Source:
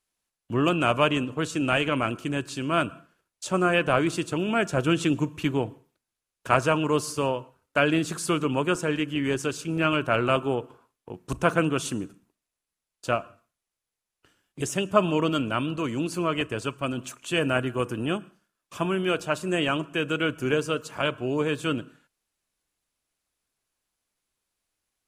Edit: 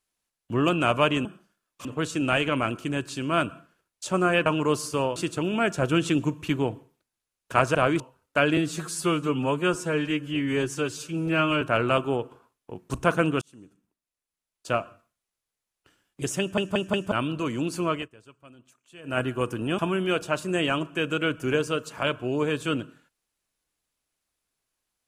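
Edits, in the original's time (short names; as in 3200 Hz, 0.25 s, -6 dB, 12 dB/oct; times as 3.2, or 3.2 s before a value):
3.86–4.11 swap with 6.7–7.4
7.97–10 stretch 1.5×
11.8–13.18 fade in
14.78 stutter in place 0.18 s, 4 plays
16.3–17.59 dip -21.5 dB, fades 0.17 s
18.17–18.77 move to 1.25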